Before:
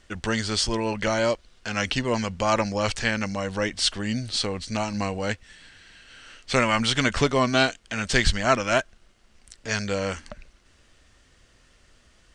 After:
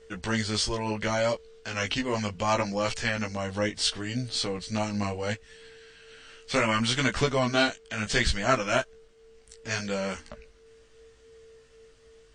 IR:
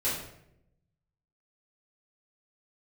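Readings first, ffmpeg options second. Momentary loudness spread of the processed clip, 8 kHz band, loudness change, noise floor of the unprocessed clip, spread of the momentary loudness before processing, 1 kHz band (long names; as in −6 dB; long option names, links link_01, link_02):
9 LU, −3.0 dB, −3.0 dB, −59 dBFS, 9 LU, −3.5 dB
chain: -af "aeval=exprs='val(0)+0.00355*sin(2*PI*450*n/s)':channel_layout=same,flanger=delay=15.5:depth=4:speed=0.7" -ar 22050 -c:a libmp3lame -b:a 40k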